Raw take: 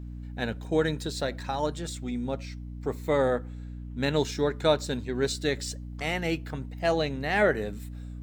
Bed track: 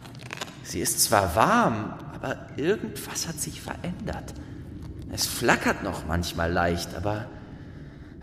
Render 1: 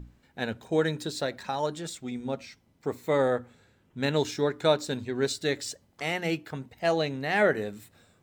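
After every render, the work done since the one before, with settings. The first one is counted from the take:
mains-hum notches 60/120/180/240/300 Hz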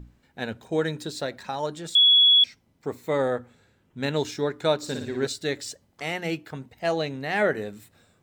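0:01.95–0:02.44: beep over 3,370 Hz −13 dBFS
0:04.77–0:05.27: flutter between parallel walls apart 9.8 metres, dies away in 0.65 s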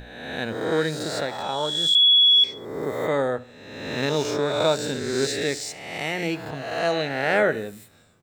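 peak hold with a rise ahead of every peak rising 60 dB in 1.25 s
repeating echo 70 ms, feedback 41%, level −20 dB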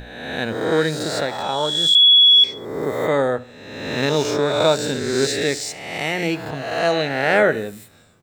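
level +4.5 dB

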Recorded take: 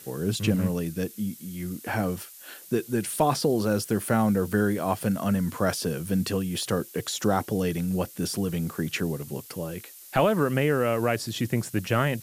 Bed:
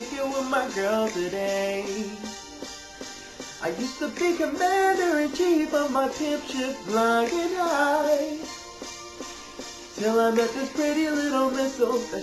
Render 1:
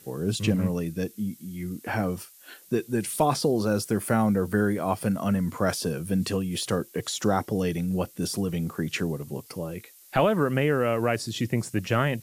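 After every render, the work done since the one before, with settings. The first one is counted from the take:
noise reduction from a noise print 6 dB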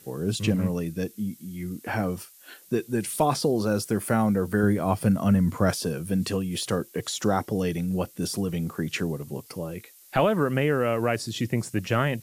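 0:04.63–0:05.71: low-shelf EQ 180 Hz +9 dB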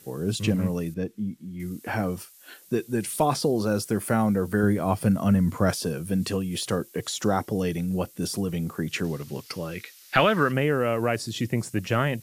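0:00.94–0:01.60: low-pass filter 1,600 Hz 6 dB per octave
0:09.04–0:10.52: flat-topped bell 2,700 Hz +9 dB 2.5 octaves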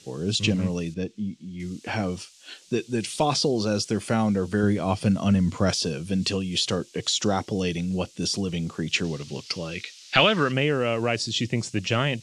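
low-pass filter 7,100 Hz 24 dB per octave
high shelf with overshoot 2,200 Hz +7 dB, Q 1.5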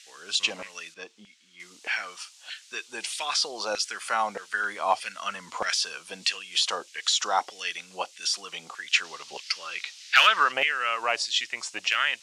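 gain into a clipping stage and back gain 10 dB
auto-filter high-pass saw down 1.6 Hz 740–2,000 Hz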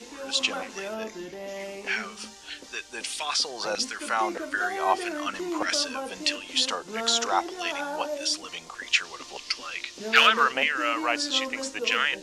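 mix in bed −10.5 dB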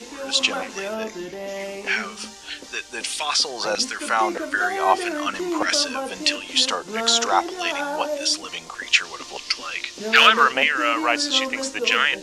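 level +5.5 dB
brickwall limiter −1 dBFS, peak gain reduction 3 dB

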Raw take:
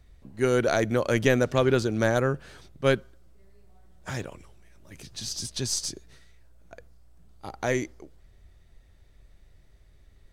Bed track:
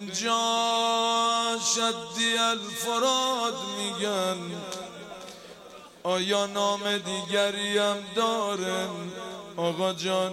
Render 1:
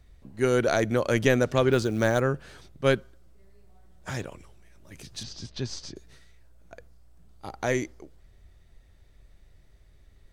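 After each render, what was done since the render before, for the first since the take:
0:01.72–0:02.20: floating-point word with a short mantissa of 4 bits
0:05.23–0:05.96: high-frequency loss of the air 190 metres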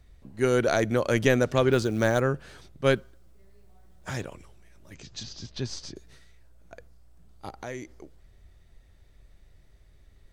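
0:02.96–0:04.09: log-companded quantiser 8 bits
0:04.94–0:05.50: elliptic low-pass filter 7,300 Hz
0:07.49–0:07.91: downward compressor 2 to 1, threshold −41 dBFS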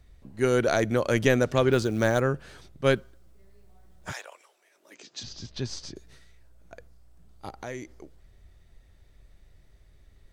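0:04.11–0:05.22: high-pass filter 760 Hz → 220 Hz 24 dB per octave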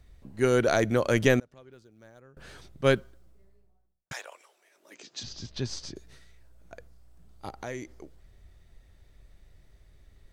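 0:01.39–0:02.37: gate with flip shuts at −22 dBFS, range −30 dB
0:02.96–0:04.11: fade out and dull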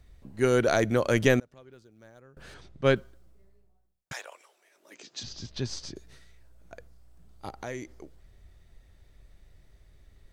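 0:02.54–0:02.96: high-frequency loss of the air 72 metres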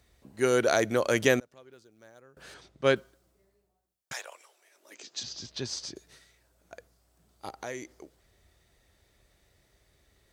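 high-pass filter 57 Hz
bass and treble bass −8 dB, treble +4 dB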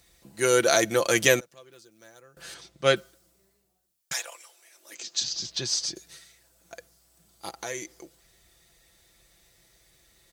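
high-shelf EQ 2,900 Hz +11 dB
comb filter 5.9 ms, depth 54%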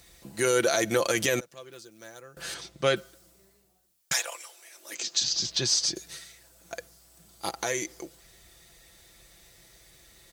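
in parallel at −0.5 dB: downward compressor, threshold −31 dBFS, peak gain reduction 16 dB
on the sum: brickwall limiter −13 dBFS, peak gain reduction 10 dB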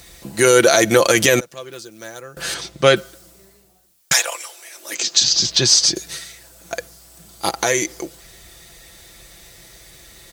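level +11.5 dB

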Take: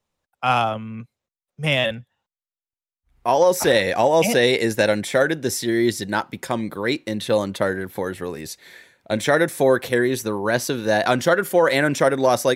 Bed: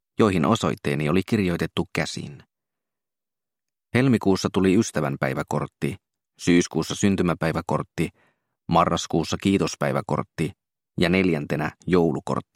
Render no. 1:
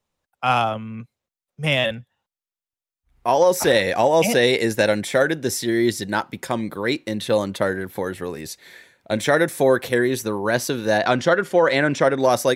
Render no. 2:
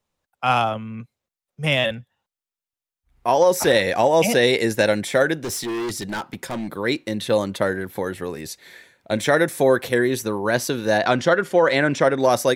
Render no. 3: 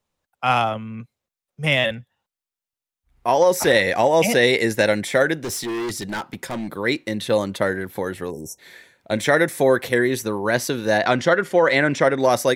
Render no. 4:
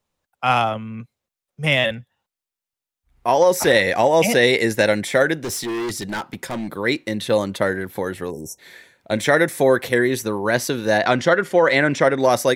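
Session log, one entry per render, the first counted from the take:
0:10.98–0:12.19: low-pass filter 5,900 Hz
0:05.41–0:06.70: gain into a clipping stage and back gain 24 dB
0:08.31–0:08.58: time-frequency box erased 1,000–5,300 Hz; dynamic equaliser 2,000 Hz, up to +5 dB, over −41 dBFS, Q 5
level +1 dB

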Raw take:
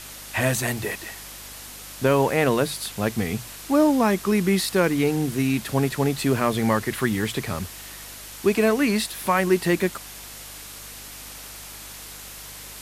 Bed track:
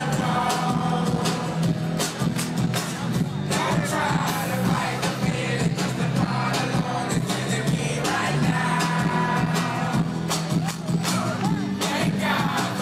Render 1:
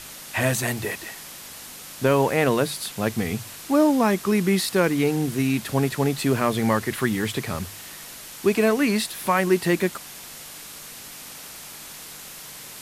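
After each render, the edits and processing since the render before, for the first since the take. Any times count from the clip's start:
hum removal 50 Hz, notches 2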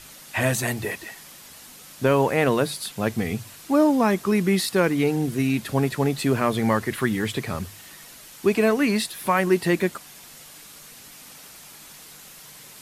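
broadband denoise 6 dB, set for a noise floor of −40 dBFS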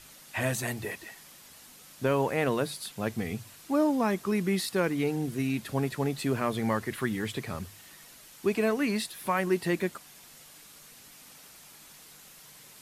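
level −7 dB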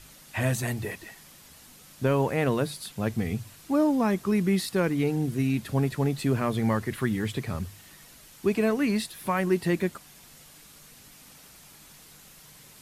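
low-shelf EQ 190 Hz +9.5 dB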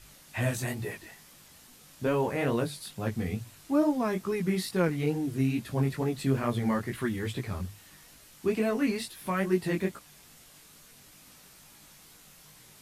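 chorus effect 2.3 Hz, delay 16.5 ms, depth 6.1 ms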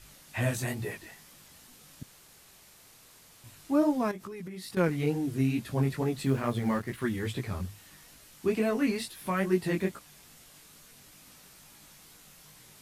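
0:02.03–0:03.44: fill with room tone
0:04.11–0:04.77: downward compressor 16 to 1, threshold −37 dBFS
0:06.25–0:07.04: mu-law and A-law mismatch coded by A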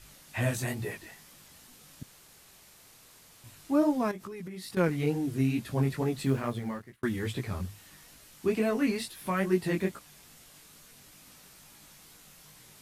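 0:06.30–0:07.03: fade out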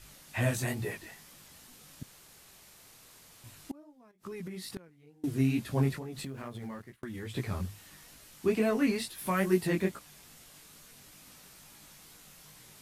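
0:03.71–0:05.24: gate with flip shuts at −29 dBFS, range −30 dB
0:05.96–0:07.37: downward compressor 12 to 1, threshold −36 dBFS
0:09.18–0:09.67: high-shelf EQ 7,400 Hz +7.5 dB

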